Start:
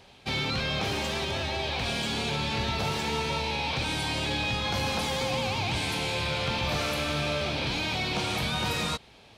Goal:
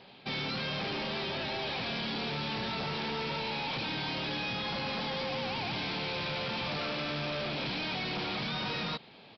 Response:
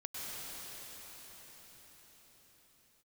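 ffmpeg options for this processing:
-af "lowshelf=f=110:t=q:w=1.5:g=-13,aresample=11025,volume=33dB,asoftclip=hard,volume=-33dB,aresample=44100"

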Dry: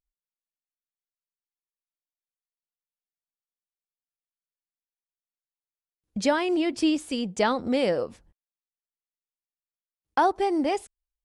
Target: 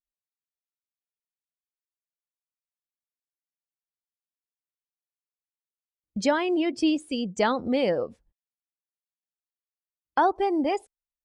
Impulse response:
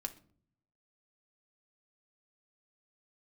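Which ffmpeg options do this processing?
-af "afftdn=nr=14:nf=-39"

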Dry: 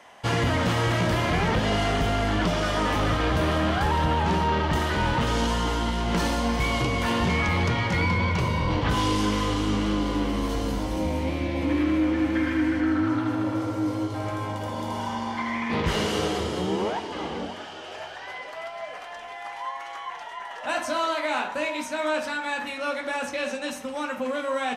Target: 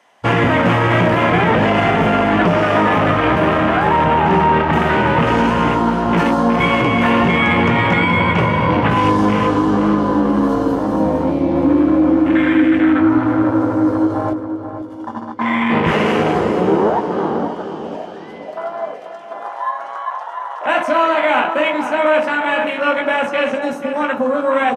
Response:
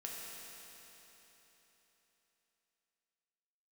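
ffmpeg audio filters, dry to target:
-filter_complex "[0:a]highpass=150,asettb=1/sr,asplit=3[a][b][c];[a]atrim=end=14.334[d];[b]atrim=start=14.33:end=15.41,asetpts=PTS-STARTPTS,afade=t=in:d=0.004:c=qsin,afade=t=out:st=1.076:d=0.004:c=qsin,agate=range=-20dB:threshold=-28dB:ratio=16:detection=peak[e];[c]atrim=start=15.406[f];[d][e]acrossfade=d=0.004:c1=hsin:c2=qsin[g];[g][f]acrossfade=d=0.004:c1=qsin:c2=hsin,afwtdn=0.0282,asplit=2[h][i];[i]adelay=18,volume=-11.5dB[j];[h][j]amix=inputs=2:normalize=0,asplit=2[k][l];[l]adelay=487,lowpass=f=1.9k:p=1,volume=-8.5dB,asplit=2[m][n];[n]adelay=487,lowpass=f=1.9k:p=1,volume=0.45,asplit=2[o][p];[p]adelay=487,lowpass=f=1.9k:p=1,volume=0.45,asplit=2[q][r];[r]adelay=487,lowpass=f=1.9k:p=1,volume=0.45,asplit=2[s][t];[t]adelay=487,lowpass=f=1.9k:p=1,volume=0.45[u];[k][m][o][q][s][u]amix=inputs=6:normalize=0,alimiter=level_in=16dB:limit=-1dB:release=50:level=0:latency=1,volume=-4dB"

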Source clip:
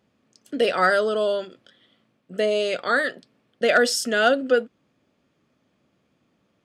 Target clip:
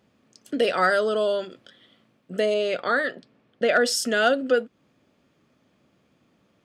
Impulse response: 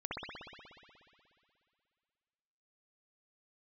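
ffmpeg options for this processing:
-filter_complex "[0:a]asettb=1/sr,asplit=3[a][b][c];[a]atrim=end=2.544[d];[b]atrim=start=2.54:end=3.86,asetpts=PTS-STARTPTS,afade=t=in:d=0.004:c=qsin,afade=t=out:st=1.316:d=0.004:c=qsin,aemphasis=mode=reproduction:type=50kf[e];[c]atrim=start=3.856[f];[d][e]acrossfade=d=0.004:c1=hsin:c2=qsin[g];[g][f]acrossfade=d=0.004:c1=qsin:c2=hsin,asplit=2[h][i];[i]acompressor=threshold=-29dB:ratio=6,volume=2.5dB[j];[h][j]amix=inputs=2:normalize=0,volume=-4dB"

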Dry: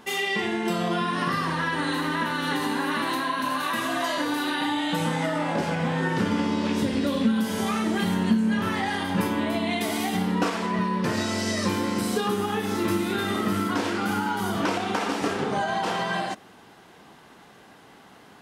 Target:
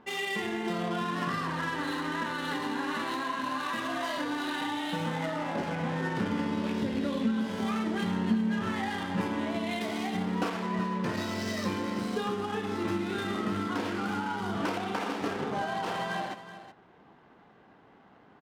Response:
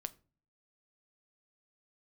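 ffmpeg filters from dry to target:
-af "adynamicsmooth=sensitivity=7.5:basefreq=1.9k,aecho=1:1:374:0.224,volume=-6dB"

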